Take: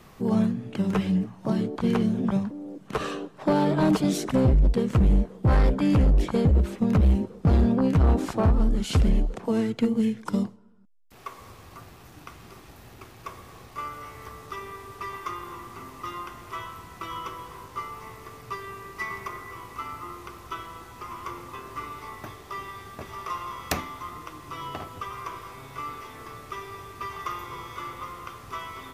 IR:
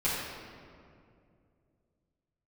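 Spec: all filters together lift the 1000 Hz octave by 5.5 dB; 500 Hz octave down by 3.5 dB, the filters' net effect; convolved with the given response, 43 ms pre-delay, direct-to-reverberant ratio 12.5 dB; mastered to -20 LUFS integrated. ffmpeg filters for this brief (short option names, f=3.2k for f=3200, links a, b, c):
-filter_complex "[0:a]equalizer=f=500:t=o:g=-6.5,equalizer=f=1k:t=o:g=8,asplit=2[a][b];[1:a]atrim=start_sample=2205,adelay=43[c];[b][c]afir=irnorm=-1:irlink=0,volume=-22.5dB[d];[a][d]amix=inputs=2:normalize=0,volume=7dB"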